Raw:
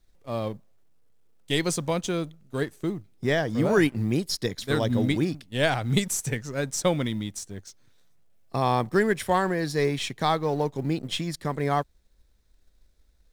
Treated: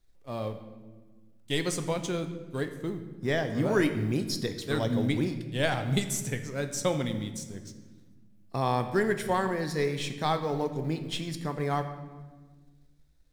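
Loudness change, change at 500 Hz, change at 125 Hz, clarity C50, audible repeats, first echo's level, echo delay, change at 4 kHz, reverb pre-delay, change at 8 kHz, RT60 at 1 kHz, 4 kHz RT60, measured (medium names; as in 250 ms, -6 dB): -3.5 dB, -3.5 dB, -3.0 dB, 10.0 dB, no echo, no echo, no echo, -4.0 dB, 7 ms, -4.0 dB, 1.3 s, 1.0 s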